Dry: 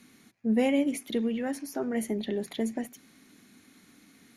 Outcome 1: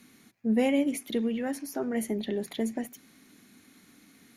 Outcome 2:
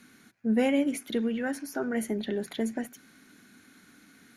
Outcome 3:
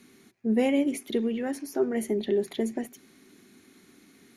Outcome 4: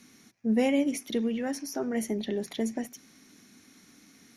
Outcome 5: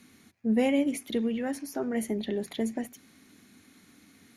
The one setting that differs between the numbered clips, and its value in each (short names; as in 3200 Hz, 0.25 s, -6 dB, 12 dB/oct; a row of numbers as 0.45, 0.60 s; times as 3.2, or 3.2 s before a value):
bell, frequency: 15000, 1500, 380, 5700, 87 Hz